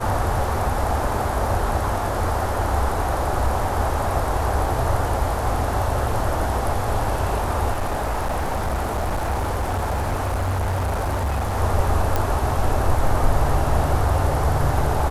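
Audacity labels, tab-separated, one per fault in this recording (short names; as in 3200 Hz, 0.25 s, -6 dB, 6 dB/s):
7.710000	11.570000	clipped -19.5 dBFS
12.160000	12.160000	pop -7 dBFS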